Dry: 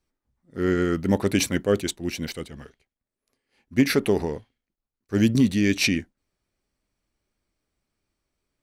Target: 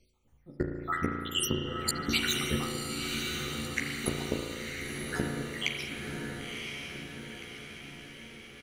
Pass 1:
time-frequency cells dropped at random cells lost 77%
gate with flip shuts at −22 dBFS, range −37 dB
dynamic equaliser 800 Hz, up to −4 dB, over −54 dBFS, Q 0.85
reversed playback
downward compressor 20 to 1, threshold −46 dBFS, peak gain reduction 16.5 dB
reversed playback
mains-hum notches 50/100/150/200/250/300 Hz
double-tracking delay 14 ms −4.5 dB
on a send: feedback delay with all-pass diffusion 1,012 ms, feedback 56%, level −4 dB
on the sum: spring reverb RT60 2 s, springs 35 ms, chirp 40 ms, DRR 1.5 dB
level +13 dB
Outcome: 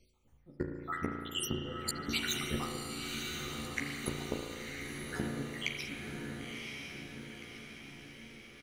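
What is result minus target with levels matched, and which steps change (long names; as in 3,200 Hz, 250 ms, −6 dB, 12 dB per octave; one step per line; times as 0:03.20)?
downward compressor: peak gain reduction +6 dB
change: downward compressor 20 to 1, threshold −39.5 dBFS, peak gain reduction 10.5 dB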